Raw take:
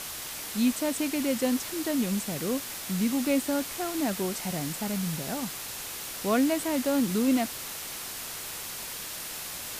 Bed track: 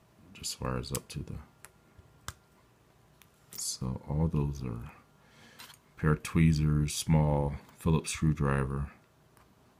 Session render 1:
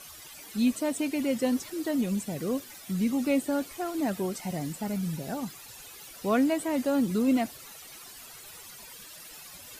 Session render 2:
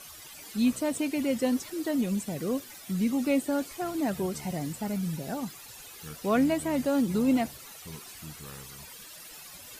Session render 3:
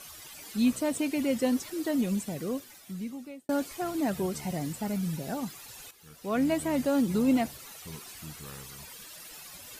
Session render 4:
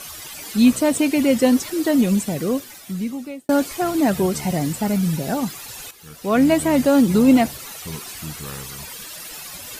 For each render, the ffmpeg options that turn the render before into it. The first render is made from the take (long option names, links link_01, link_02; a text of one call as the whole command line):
ffmpeg -i in.wav -af "afftdn=noise_reduction=14:noise_floor=-38" out.wav
ffmpeg -i in.wav -i bed.wav -filter_complex "[1:a]volume=-17.5dB[link_01];[0:a][link_01]amix=inputs=2:normalize=0" out.wav
ffmpeg -i in.wav -filter_complex "[0:a]asplit=3[link_01][link_02][link_03];[link_01]atrim=end=3.49,asetpts=PTS-STARTPTS,afade=type=out:start_time=2.13:duration=1.36[link_04];[link_02]atrim=start=3.49:end=5.91,asetpts=PTS-STARTPTS,afade=type=in:duration=0.004:curve=hsin,afade=type=out:start_time=2.416:duration=0.004:curve=hsin:silence=0.251189[link_05];[link_03]atrim=start=5.91,asetpts=PTS-STARTPTS,afade=type=in:duration=0.63:curve=qua:silence=0.251189[link_06];[link_04][link_05][link_06]concat=n=3:v=0:a=1" out.wav
ffmpeg -i in.wav -af "volume=11dB" out.wav